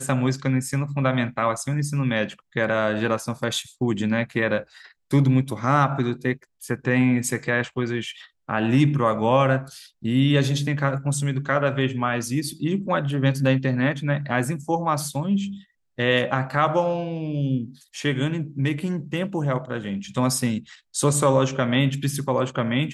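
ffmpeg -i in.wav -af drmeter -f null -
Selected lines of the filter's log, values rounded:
Channel 1: DR: 12.8
Overall DR: 12.8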